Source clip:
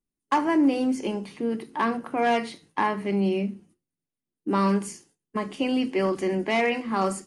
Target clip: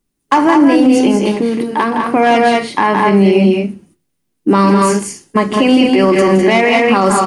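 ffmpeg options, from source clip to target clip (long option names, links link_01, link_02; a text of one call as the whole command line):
ffmpeg -i in.wav -filter_complex "[0:a]asettb=1/sr,asplit=3[link_01][link_02][link_03];[link_01]atrim=end=1.274[link_04];[link_02]atrim=start=1.27:end=2,asetpts=PTS-STARTPTS,afade=type=in:duration=0.004:curve=qsin,afade=type=out:start_time=0.726:duration=0.004:curve=qsin,acompressor=threshold=-28dB:ratio=6[link_05];[link_03]atrim=start=1.996[link_06];[link_04][link_05]acrossfade=duration=0.004:curve1=hsin:curve2=qsin[link_07];[link_07][link_06]acrossfade=duration=0.004:curve1=qsin:curve2=hsin,aecho=1:1:166.2|204.1:0.398|0.562,alimiter=level_in=17dB:limit=-1dB:release=50:level=0:latency=1,volume=-1dB" out.wav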